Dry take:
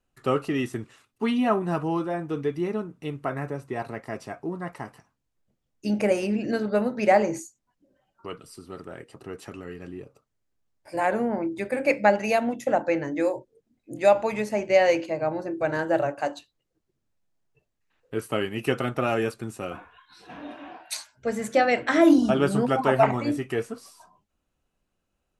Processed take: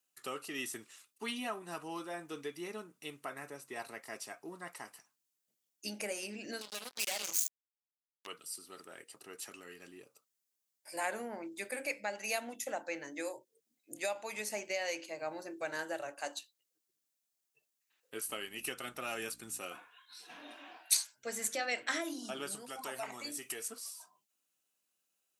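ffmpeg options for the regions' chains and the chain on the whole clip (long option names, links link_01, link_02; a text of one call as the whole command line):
ffmpeg -i in.wav -filter_complex "[0:a]asettb=1/sr,asplit=3[link_01][link_02][link_03];[link_01]atrim=end=6.614[link_04];[link_02]atrim=start=6.61:end=8.27,asetpts=PTS-STARTPTS,afade=type=in:duration=0.004:curve=qsin,afade=type=out:start_time=1.656:duration=0.004:curve=qsin,highshelf=frequency=2300:width_type=q:width=3:gain=10,acompressor=threshold=-33dB:ratio=3:attack=3.2:release=140:knee=1:detection=peak,acrusher=bits=4:mix=0:aa=0.5[link_05];[link_03]atrim=start=8.266[link_06];[link_04][link_05]acrossfade=duration=0.004:curve1=hsin:curve2=qsin[link_07];[link_07][link_06]acrossfade=duration=0.004:curve1=qsin:curve2=hsin,asettb=1/sr,asplit=3[link_08][link_09][link_10];[link_08]atrim=end=18.284[link_11];[link_09]atrim=start=18.28:end=19.59,asetpts=PTS-STARTPTS,afade=type=in:duration=0.004:curve=qsin,afade=type=out:start_time=1.306:duration=0.004:curve=qsin,asubboost=boost=3.5:cutoff=220,aeval=exprs='val(0)+0.0126*(sin(2*PI*60*n/s)+sin(2*PI*2*60*n/s)/2+sin(2*PI*3*60*n/s)/3+sin(2*PI*4*60*n/s)/4+sin(2*PI*5*60*n/s)/5)':channel_layout=same[link_12];[link_10]atrim=start=19.586[link_13];[link_11][link_12]acrossfade=duration=0.004:curve1=hsin:curve2=qsin[link_14];[link_14][link_13]acrossfade=duration=0.004:curve1=qsin:curve2=hsin,asettb=1/sr,asplit=3[link_15][link_16][link_17];[link_15]atrim=end=22.554[link_18];[link_16]atrim=start=22.55:end=23.68,asetpts=PTS-STARTPTS,afade=type=in:duration=0.004:curve=qsin,afade=type=out:start_time=1.126:duration=0.004:curve=qsin,bass=frequency=250:gain=-1,treble=frequency=4000:gain=7,acompressor=threshold=-34dB:ratio=2:attack=3.2:release=140:knee=1:detection=peak[link_19];[link_17]atrim=start=23.676[link_20];[link_18][link_19]acrossfade=duration=0.004:curve1=hsin:curve2=qsin[link_21];[link_21][link_20]acrossfade=duration=0.004:curve1=qsin:curve2=hsin,equalizer=frequency=250:width=0.53:gain=6.5,alimiter=limit=-13dB:level=0:latency=1:release=445,aderivative,volume=5.5dB" out.wav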